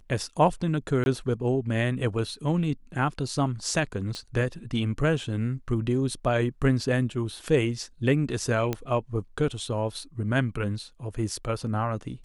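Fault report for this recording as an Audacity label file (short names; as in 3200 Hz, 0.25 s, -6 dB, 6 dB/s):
1.040000	1.060000	gap 21 ms
4.150000	4.150000	pop -22 dBFS
8.730000	8.730000	pop -14 dBFS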